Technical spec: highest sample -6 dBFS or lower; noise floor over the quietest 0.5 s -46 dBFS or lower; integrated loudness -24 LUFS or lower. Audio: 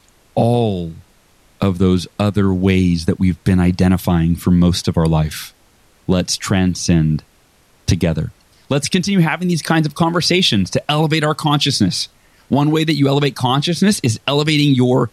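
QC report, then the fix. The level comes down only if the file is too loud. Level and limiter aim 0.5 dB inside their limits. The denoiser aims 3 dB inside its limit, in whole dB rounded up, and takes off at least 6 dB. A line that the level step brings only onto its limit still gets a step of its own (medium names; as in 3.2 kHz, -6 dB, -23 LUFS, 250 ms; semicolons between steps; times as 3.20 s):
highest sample -3.5 dBFS: fail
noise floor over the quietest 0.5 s -53 dBFS: pass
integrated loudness -16.0 LUFS: fail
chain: trim -8.5 dB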